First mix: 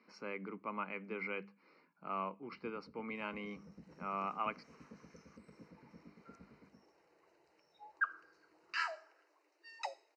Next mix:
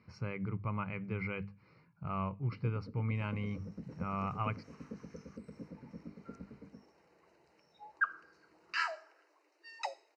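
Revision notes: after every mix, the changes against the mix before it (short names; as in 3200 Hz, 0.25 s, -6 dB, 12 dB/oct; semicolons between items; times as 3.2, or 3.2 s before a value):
speech: remove steep high-pass 230 Hz 36 dB/oct; first sound +10.0 dB; second sound +3.0 dB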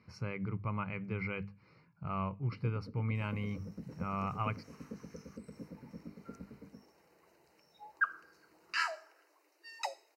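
master: remove air absorption 77 m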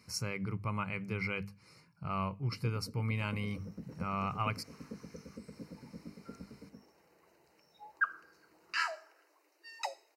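speech: remove air absorption 330 m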